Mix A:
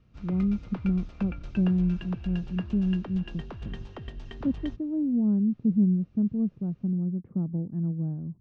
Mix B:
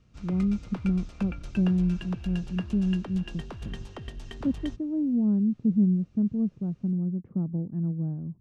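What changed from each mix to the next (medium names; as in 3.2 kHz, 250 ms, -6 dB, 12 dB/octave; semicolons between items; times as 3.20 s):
master: remove distance through air 150 m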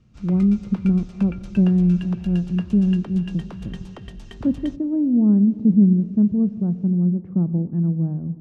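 speech +4.5 dB; reverb: on, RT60 2.9 s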